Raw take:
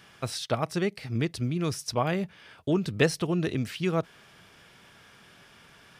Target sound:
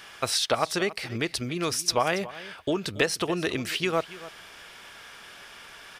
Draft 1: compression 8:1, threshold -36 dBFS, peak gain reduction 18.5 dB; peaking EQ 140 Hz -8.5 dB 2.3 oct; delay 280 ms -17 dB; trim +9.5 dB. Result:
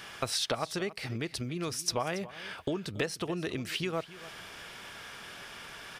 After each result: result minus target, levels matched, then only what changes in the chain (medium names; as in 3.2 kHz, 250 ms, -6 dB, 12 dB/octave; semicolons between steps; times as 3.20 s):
compression: peak gain reduction +9.5 dB; 125 Hz band +5.5 dB
change: compression 8:1, threshold -25 dBFS, peak gain reduction 9 dB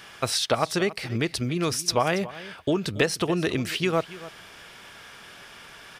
125 Hz band +4.5 dB
change: peaking EQ 140 Hz -15 dB 2.3 oct